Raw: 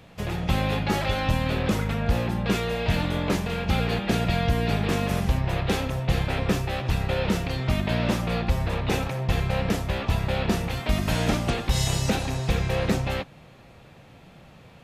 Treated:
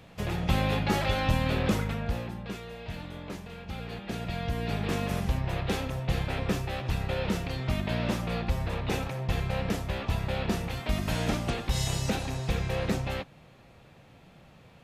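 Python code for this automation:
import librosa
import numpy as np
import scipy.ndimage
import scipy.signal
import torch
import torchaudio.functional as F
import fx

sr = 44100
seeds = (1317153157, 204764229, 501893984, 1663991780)

y = fx.gain(x, sr, db=fx.line((1.71, -2.0), (2.58, -14.5), (3.73, -14.5), (4.92, -5.0)))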